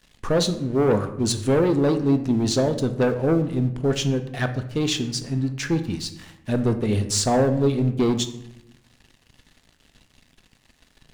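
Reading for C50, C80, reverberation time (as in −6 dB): 11.5 dB, 14.0 dB, 0.85 s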